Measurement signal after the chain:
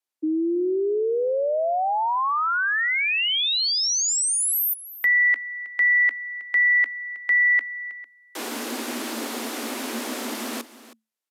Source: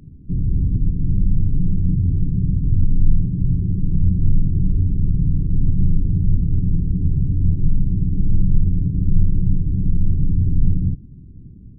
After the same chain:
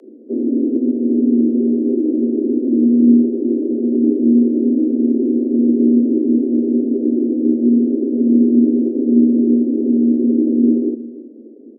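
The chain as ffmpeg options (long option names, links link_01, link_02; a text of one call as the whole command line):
ffmpeg -i in.wav -af "afreqshift=220,aresample=32000,aresample=44100,aecho=1:1:318:0.15" out.wav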